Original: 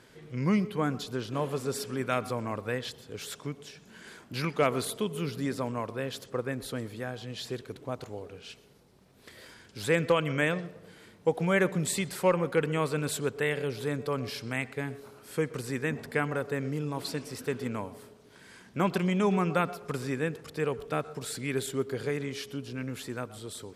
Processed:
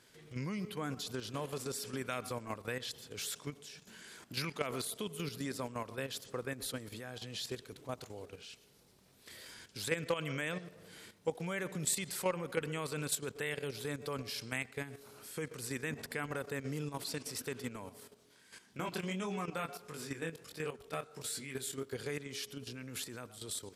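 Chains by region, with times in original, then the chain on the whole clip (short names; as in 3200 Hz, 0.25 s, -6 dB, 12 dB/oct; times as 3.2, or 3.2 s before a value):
18–21.93 chorus 1.5 Hz, delay 19.5 ms, depth 5.1 ms + low shelf 86 Hz -4.5 dB
whole clip: level quantiser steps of 11 dB; high shelf 2600 Hz +10.5 dB; compressor 1.5:1, threshold -38 dBFS; gain -2 dB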